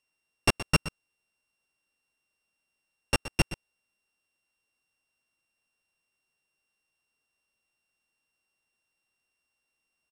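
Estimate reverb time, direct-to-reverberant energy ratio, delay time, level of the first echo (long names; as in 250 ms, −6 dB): no reverb audible, no reverb audible, 122 ms, −14.0 dB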